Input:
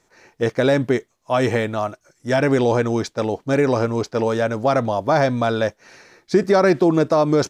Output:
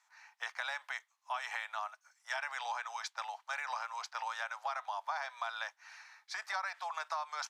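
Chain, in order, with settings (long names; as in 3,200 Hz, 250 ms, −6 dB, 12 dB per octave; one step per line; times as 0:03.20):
Butterworth high-pass 820 Hz 48 dB per octave
high-shelf EQ 4,800 Hz −6.5 dB
downward compressor 6 to 1, threshold −29 dBFS, peak gain reduction 10 dB
level −5.5 dB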